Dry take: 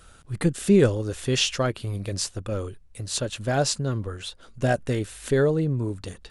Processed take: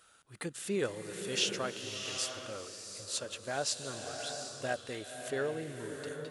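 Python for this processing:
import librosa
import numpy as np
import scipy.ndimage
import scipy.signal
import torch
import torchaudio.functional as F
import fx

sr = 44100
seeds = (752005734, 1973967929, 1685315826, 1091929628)

y = fx.highpass(x, sr, hz=770.0, slope=6)
y = fx.rev_bloom(y, sr, seeds[0], attack_ms=740, drr_db=4.5)
y = F.gain(torch.from_numpy(y), -7.5).numpy()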